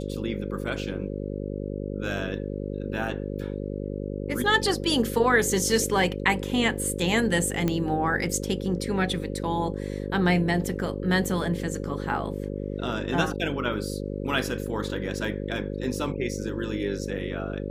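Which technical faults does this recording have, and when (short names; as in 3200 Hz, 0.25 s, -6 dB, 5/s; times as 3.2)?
buzz 50 Hz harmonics 11 -32 dBFS
7.68 pop -12 dBFS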